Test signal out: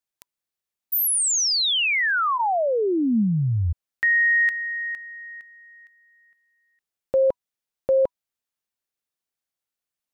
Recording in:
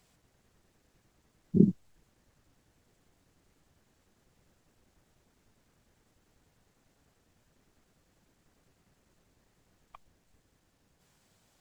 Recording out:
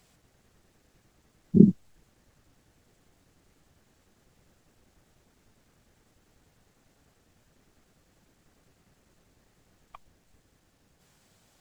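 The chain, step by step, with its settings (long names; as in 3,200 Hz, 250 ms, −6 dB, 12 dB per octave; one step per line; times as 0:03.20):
notch filter 980 Hz, Q 27
dynamic equaliser 220 Hz, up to +3 dB, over −39 dBFS, Q 4.5
level +4.5 dB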